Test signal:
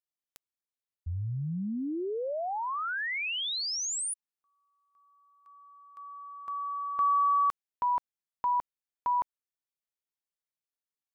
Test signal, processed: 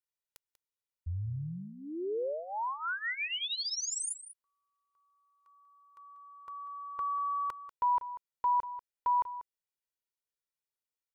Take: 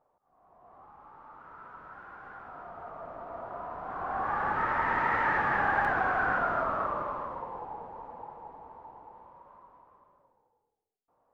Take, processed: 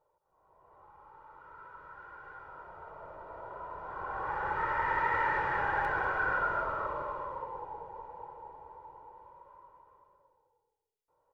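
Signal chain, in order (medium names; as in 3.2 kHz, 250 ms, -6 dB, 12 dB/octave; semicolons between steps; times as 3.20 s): comb 2.1 ms, depth 77%; delay 191 ms -13.5 dB; trim -5 dB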